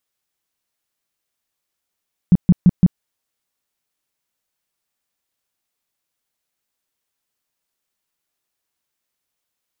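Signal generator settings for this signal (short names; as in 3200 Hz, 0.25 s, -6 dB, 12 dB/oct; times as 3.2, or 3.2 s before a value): tone bursts 178 Hz, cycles 6, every 0.17 s, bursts 4, -5.5 dBFS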